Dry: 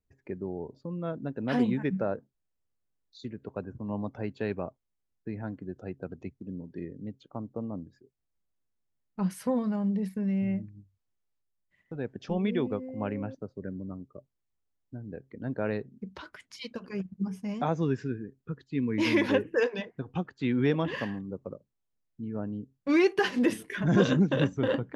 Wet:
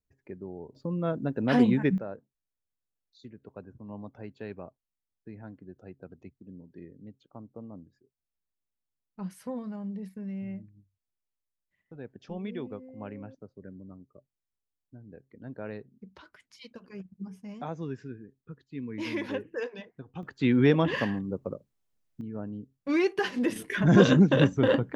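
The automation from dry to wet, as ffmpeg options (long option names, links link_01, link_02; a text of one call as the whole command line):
ffmpeg -i in.wav -af "asetnsamples=nb_out_samples=441:pad=0,asendcmd='0.75 volume volume 4.5dB;1.98 volume volume -8dB;20.23 volume volume 4.5dB;22.21 volume volume -2.5dB;23.56 volume volume 4.5dB',volume=-5dB" out.wav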